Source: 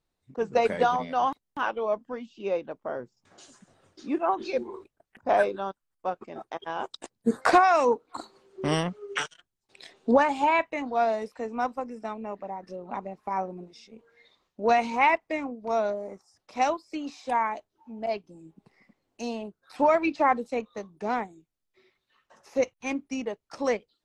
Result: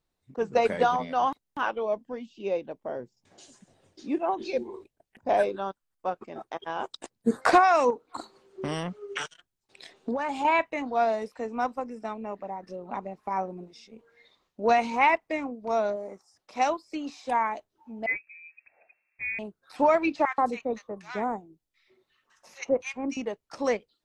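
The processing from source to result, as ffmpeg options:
ffmpeg -i in.wav -filter_complex "[0:a]asettb=1/sr,asplit=3[link_01][link_02][link_03];[link_01]atrim=end=1.824[link_04];[link_02]atrim=start=1.82:end=5.48,asetpts=PTS-STARTPTS,afade=type=in:duration=0.004:curve=qsin,afade=type=out:start_time=3.656:duration=0.004:curve=qsin,equalizer=frequency=1300:width_type=o:width=0.69:gain=-9[link_05];[link_03]atrim=start=5.476[link_06];[link_04][link_05]acrossfade=duration=0.004:curve1=hsin:curve2=qsin[link_07];[link_07][link_06]acrossfade=duration=0.004:curve1=qsin:curve2=hsin,asettb=1/sr,asplit=3[link_08][link_09][link_10];[link_08]atrim=end=7.904[link_11];[link_09]atrim=start=7.9:end=10.45,asetpts=PTS-STARTPTS,afade=type=in:duration=0.004:curve=qsin,afade=type=out:start_time=2.546:duration=0.004:curve=qsin,acompressor=threshold=-26dB:ratio=6:attack=3.2:release=140:knee=1:detection=peak[link_12];[link_10]atrim=start=10.446[link_13];[link_11][link_12]acrossfade=duration=0.004:curve1=hsin:curve2=qsin[link_14];[link_14][link_13]acrossfade=duration=0.004:curve1=qsin:curve2=hsin,asettb=1/sr,asplit=3[link_15][link_16][link_17];[link_15]atrim=end=15.964[link_18];[link_16]atrim=start=15.96:end=16.71,asetpts=PTS-STARTPTS,afade=type=in:duration=0.004:curve=qsin,afade=type=out:start_time=0.746:duration=0.004:curve=qsin,lowshelf=frequency=160:gain=-7[link_19];[link_17]atrim=start=16.706[link_20];[link_18][link_19]acrossfade=duration=0.004:curve1=hsin:curve2=qsin[link_21];[link_21][link_20]acrossfade=duration=0.004:curve1=qsin:curve2=hsin,asettb=1/sr,asplit=3[link_22][link_23][link_24];[link_22]atrim=end=18.064[link_25];[link_23]atrim=start=18.06:end=19.39,asetpts=PTS-STARTPTS,afade=type=in:duration=0.004:curve=qsin,afade=type=out:start_time=1.326:duration=0.004:curve=qsin,lowpass=frequency=2300:width_type=q:width=0.5098,lowpass=frequency=2300:width_type=q:width=0.6013,lowpass=frequency=2300:width_type=q:width=0.9,lowpass=frequency=2300:width_type=q:width=2.563,afreqshift=-2700[link_26];[link_24]atrim=start=19.386[link_27];[link_25][link_26]acrossfade=duration=0.004:curve1=hsin:curve2=qsin[link_28];[link_28][link_27]acrossfade=duration=0.004:curve1=qsin:curve2=hsin,asettb=1/sr,asplit=3[link_29][link_30][link_31];[link_29]atrim=end=20.254[link_32];[link_30]atrim=start=20.25:end=23.17,asetpts=PTS-STARTPTS,afade=type=in:duration=0.004:curve=qsin,afade=type=out:start_time=2.916:duration=0.004:curve=qsin,acrossover=split=1300[link_33][link_34];[link_33]adelay=130[link_35];[link_35][link_34]amix=inputs=2:normalize=0,atrim=end_sample=128772[link_36];[link_31]atrim=start=23.166[link_37];[link_32][link_36]acrossfade=duration=0.004:curve1=hsin:curve2=qsin[link_38];[link_38][link_37]acrossfade=duration=0.004:curve1=qsin:curve2=hsin" out.wav

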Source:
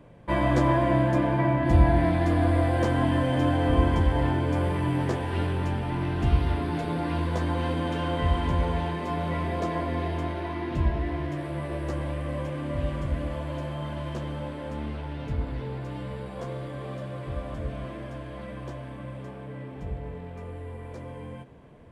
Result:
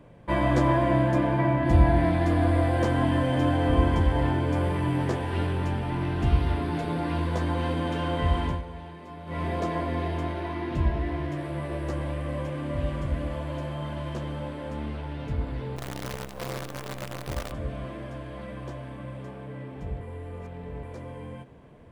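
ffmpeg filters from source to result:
ffmpeg -i in.wav -filter_complex "[0:a]asettb=1/sr,asplit=3[link_01][link_02][link_03];[link_01]atrim=end=15.764[link_04];[link_02]atrim=start=15.76:end=17.52,asetpts=PTS-STARTPTS,afade=type=in:duration=0.004:curve=qsin,afade=type=out:start_time=1.756:duration=0.004:curve=qsin,acrusher=bits=6:dc=4:mix=0:aa=0.000001[link_05];[link_03]atrim=start=17.516[link_06];[link_04][link_05]acrossfade=duration=0.004:curve1=hsin:curve2=qsin[link_07];[link_07][link_06]acrossfade=duration=0.004:curve1=qsin:curve2=hsin,asplit=5[link_08][link_09][link_10][link_11][link_12];[link_08]atrim=end=8.62,asetpts=PTS-STARTPTS,afade=type=out:start_time=8.38:duration=0.24:curve=qsin:silence=0.237137[link_13];[link_09]atrim=start=8.62:end=9.26,asetpts=PTS-STARTPTS,volume=-12.5dB[link_14];[link_10]atrim=start=9.26:end=20.012,asetpts=PTS-STARTPTS,afade=type=in:duration=0.24:curve=qsin:silence=0.237137[link_15];[link_11]atrim=start=20.008:end=20.832,asetpts=PTS-STARTPTS,areverse[link_16];[link_12]atrim=start=20.828[link_17];[link_13][link_14][link_15]concat=n=3:v=0:a=1[link_18];[link_18][link_16]acrossfade=duration=0.004:curve1=hsin:curve2=hsin[link_19];[link_19][link_17]acrossfade=duration=0.004:curve1=hsin:curve2=hsin" out.wav

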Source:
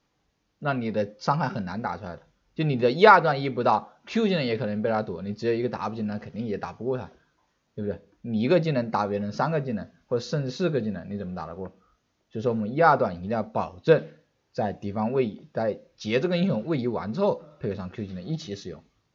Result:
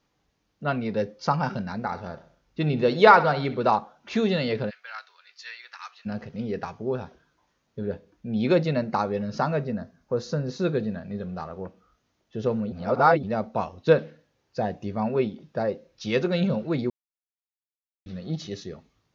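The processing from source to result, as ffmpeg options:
ffmpeg -i in.wav -filter_complex "[0:a]asplit=3[link_01][link_02][link_03];[link_01]afade=type=out:start_time=1.9:duration=0.02[link_04];[link_02]aecho=1:1:65|130|195|260:0.168|0.0823|0.0403|0.0198,afade=type=in:start_time=1.9:duration=0.02,afade=type=out:start_time=3.71:duration=0.02[link_05];[link_03]afade=type=in:start_time=3.71:duration=0.02[link_06];[link_04][link_05][link_06]amix=inputs=3:normalize=0,asplit=3[link_07][link_08][link_09];[link_07]afade=type=out:start_time=4.69:duration=0.02[link_10];[link_08]highpass=frequency=1400:width=0.5412,highpass=frequency=1400:width=1.3066,afade=type=in:start_time=4.69:duration=0.02,afade=type=out:start_time=6.05:duration=0.02[link_11];[link_09]afade=type=in:start_time=6.05:duration=0.02[link_12];[link_10][link_11][link_12]amix=inputs=3:normalize=0,asettb=1/sr,asplit=3[link_13][link_14][link_15];[link_13]atrim=end=9.704[link_16];[link_14]atrim=start=9.7:end=10.65,asetpts=PTS-STARTPTS,afade=type=in:duration=0.004:curve=qsin,afade=type=out:start_time=0.946:duration=0.004:curve=qsin,equalizer=frequency=3000:width=1.2:gain=-7.5[link_17];[link_15]atrim=start=10.646[link_18];[link_16][link_17]acrossfade=duration=0.004:curve1=hsin:curve2=qsin[link_19];[link_19][link_18]acrossfade=duration=0.004:curve1=qsin:curve2=hsin,asplit=5[link_20][link_21][link_22][link_23][link_24];[link_20]atrim=end=12.722[link_25];[link_21]atrim=start=12.718:end=13.232,asetpts=PTS-STARTPTS,areverse[link_26];[link_22]atrim=start=13.228:end=16.9,asetpts=PTS-STARTPTS,afade=type=out:start_time=3.668:duration=0.004:curve=hsin[link_27];[link_23]atrim=start=16.9:end=18.06,asetpts=PTS-STARTPTS,volume=0[link_28];[link_24]atrim=start=18.06,asetpts=PTS-STARTPTS,afade=type=in:duration=0.004:curve=hsin[link_29];[link_25][link_26]acrossfade=duration=0.004:curve1=hsin:curve2=hsin[link_30];[link_27][link_28][link_29]concat=n=3:v=0:a=1[link_31];[link_30][link_31]acrossfade=duration=0.004:curve1=hsin:curve2=hsin" out.wav

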